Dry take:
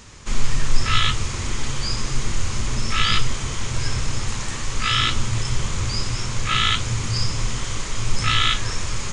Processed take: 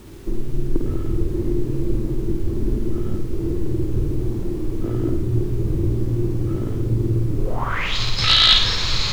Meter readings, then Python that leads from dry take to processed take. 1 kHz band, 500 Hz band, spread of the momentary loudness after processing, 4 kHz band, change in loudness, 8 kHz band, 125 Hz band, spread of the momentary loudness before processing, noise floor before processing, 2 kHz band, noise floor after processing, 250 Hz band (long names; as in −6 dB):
−4.5 dB, +9.5 dB, 12 LU, +3.0 dB, +2.0 dB, below −10 dB, +3.0 dB, 9 LU, −28 dBFS, −3.5 dB, −26 dBFS, +9.0 dB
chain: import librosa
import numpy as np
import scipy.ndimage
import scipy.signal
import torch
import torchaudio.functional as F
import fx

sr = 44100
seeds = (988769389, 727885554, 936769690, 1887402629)

p1 = fx.peak_eq(x, sr, hz=230.0, db=-4.0, octaves=0.2)
p2 = fx.over_compress(p1, sr, threshold_db=-20.0, ratio=-0.5)
p3 = p1 + F.gain(torch.from_numpy(p2), 0.0).numpy()
p4 = (np.mod(10.0 ** (3.5 / 20.0) * p3 + 1.0, 2.0) - 1.0) / 10.0 ** (3.5 / 20.0)
p5 = fx.filter_sweep_lowpass(p4, sr, from_hz=340.0, to_hz=4100.0, start_s=7.38, end_s=7.96, q=6.7)
p6 = fx.dmg_noise_colour(p5, sr, seeds[0], colour='pink', level_db=-44.0)
p7 = p6 + fx.room_flutter(p6, sr, wall_m=8.8, rt60_s=0.57, dry=0)
y = F.gain(torch.from_numpy(p7), -6.0).numpy()